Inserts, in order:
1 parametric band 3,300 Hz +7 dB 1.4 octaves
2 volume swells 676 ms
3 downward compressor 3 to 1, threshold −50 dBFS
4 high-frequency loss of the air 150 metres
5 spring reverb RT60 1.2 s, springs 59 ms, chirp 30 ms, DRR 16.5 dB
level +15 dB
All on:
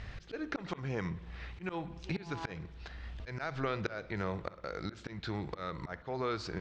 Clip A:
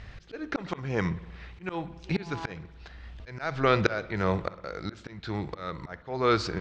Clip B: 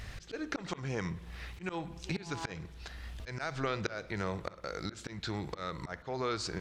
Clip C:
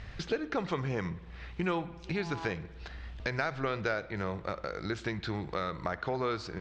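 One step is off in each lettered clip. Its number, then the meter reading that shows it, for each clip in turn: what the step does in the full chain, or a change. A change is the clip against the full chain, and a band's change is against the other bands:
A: 3, average gain reduction 4.0 dB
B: 4, 8 kHz band +10.0 dB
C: 2, 125 Hz band −1.5 dB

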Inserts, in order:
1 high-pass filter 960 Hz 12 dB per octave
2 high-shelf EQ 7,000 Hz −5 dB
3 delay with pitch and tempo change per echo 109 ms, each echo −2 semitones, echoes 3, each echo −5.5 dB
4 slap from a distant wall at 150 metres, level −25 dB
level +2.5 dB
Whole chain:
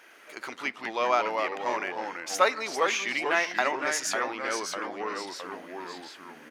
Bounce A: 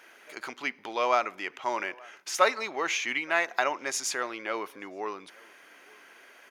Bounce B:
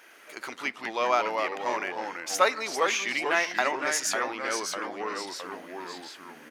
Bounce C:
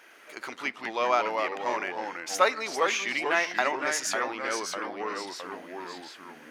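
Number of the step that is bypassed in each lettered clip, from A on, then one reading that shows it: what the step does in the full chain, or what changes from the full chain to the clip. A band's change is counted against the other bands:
3, change in integrated loudness −1.0 LU
2, 8 kHz band +2.5 dB
4, echo-to-direct ratio −27.5 dB to none audible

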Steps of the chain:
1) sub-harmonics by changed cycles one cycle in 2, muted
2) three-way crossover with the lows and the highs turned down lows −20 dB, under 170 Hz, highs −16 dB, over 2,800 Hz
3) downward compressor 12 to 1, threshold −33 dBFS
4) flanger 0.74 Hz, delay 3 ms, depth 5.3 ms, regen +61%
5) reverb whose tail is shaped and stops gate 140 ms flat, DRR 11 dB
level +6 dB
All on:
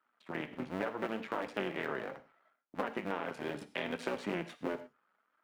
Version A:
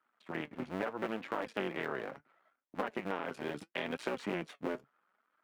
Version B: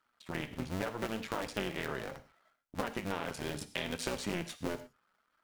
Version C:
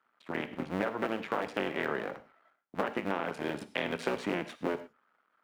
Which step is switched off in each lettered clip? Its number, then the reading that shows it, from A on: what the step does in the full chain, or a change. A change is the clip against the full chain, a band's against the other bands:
5, change in momentary loudness spread −1 LU
2, 8 kHz band +13.5 dB
4, change in integrated loudness +4.0 LU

